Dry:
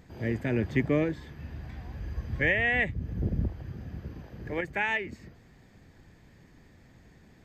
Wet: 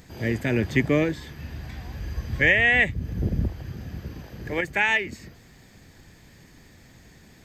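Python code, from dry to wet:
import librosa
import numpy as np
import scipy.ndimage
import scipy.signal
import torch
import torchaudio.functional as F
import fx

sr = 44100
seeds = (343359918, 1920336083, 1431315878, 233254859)

y = fx.high_shelf(x, sr, hz=3000.0, db=11.5)
y = y * 10.0 ** (4.0 / 20.0)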